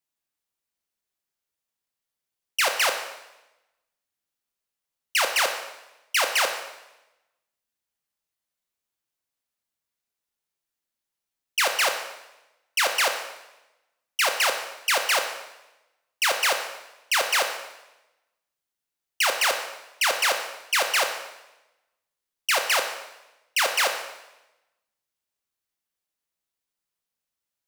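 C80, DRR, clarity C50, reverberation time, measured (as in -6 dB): 9.5 dB, 4.5 dB, 7.5 dB, 0.95 s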